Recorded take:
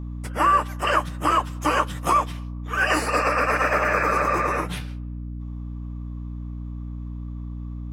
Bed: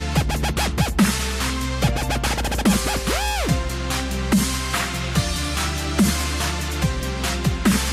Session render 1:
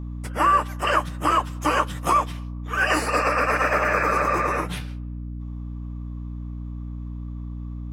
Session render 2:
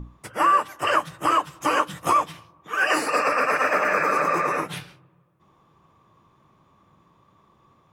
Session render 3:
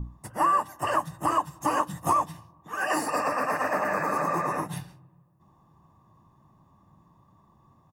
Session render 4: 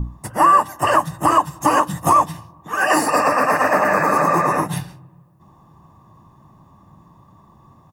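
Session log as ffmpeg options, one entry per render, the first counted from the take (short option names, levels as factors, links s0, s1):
-af anull
-af "bandreject=f=60:t=h:w=6,bandreject=f=120:t=h:w=6,bandreject=f=180:t=h:w=6,bandreject=f=240:t=h:w=6,bandreject=f=300:t=h:w=6"
-af "equalizer=f=2700:w=0.64:g=-13.5,aecho=1:1:1.1:0.55"
-af "volume=3.35,alimiter=limit=0.708:level=0:latency=1"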